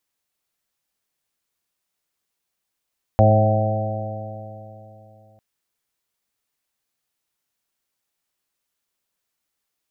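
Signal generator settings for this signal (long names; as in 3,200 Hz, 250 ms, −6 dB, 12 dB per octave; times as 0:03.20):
stiff-string partials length 2.20 s, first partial 106 Hz, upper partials −7.5/−14.5/−18.5/−4.5/−4/−5.5 dB, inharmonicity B 0.0014, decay 3.18 s, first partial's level −12.5 dB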